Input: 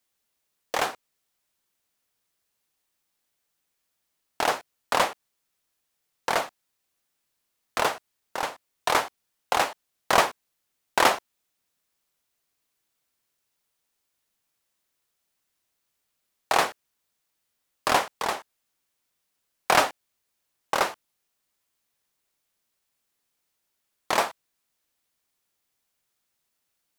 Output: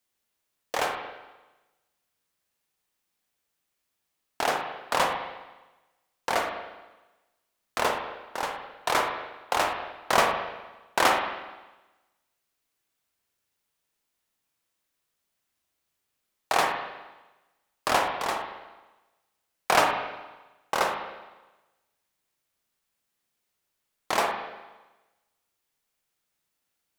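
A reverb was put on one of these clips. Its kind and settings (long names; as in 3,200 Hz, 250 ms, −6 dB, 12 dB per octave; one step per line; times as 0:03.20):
spring reverb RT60 1.1 s, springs 38/51 ms, chirp 60 ms, DRR 2.5 dB
level −2.5 dB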